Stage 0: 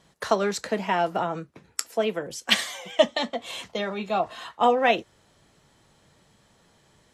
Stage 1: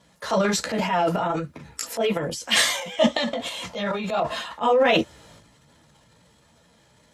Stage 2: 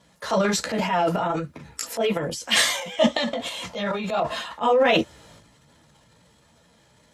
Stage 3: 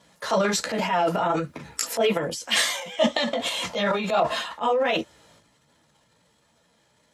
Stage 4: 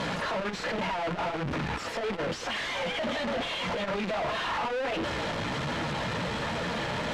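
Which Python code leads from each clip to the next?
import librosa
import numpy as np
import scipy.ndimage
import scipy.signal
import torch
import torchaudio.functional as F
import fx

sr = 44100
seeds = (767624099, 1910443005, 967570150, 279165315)

y1 = fx.chorus_voices(x, sr, voices=2, hz=1.3, base_ms=15, depth_ms=3.0, mix_pct=50)
y1 = fx.notch_comb(y1, sr, f0_hz=380.0)
y1 = fx.transient(y1, sr, attack_db=-5, sustain_db=10)
y1 = y1 * librosa.db_to_amplitude(6.0)
y2 = y1
y3 = fx.rider(y2, sr, range_db=5, speed_s=0.5)
y3 = fx.low_shelf(y3, sr, hz=150.0, db=-8.5)
y4 = np.sign(y3) * np.sqrt(np.mean(np.square(y3)))
y4 = scipy.signal.sosfilt(scipy.signal.butter(2, 2900.0, 'lowpass', fs=sr, output='sos'), y4)
y4 = fx.transformer_sat(y4, sr, knee_hz=99.0)
y4 = y4 * librosa.db_to_amplitude(-2.0)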